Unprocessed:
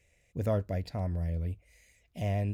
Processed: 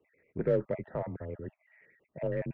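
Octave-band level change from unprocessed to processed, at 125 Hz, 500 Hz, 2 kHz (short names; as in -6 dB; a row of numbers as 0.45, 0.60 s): -8.0, +4.0, +0.5 dB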